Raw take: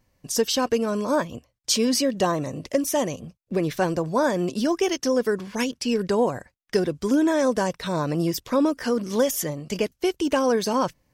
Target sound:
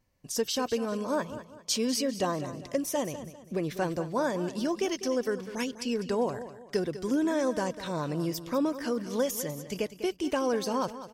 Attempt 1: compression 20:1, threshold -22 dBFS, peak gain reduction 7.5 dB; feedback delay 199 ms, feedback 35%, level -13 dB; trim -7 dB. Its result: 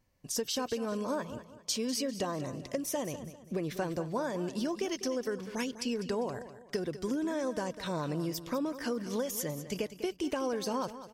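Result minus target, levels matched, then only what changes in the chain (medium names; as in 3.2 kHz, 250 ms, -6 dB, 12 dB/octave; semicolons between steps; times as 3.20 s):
compression: peak gain reduction +7.5 dB
remove: compression 20:1, threshold -22 dBFS, peak gain reduction 7.5 dB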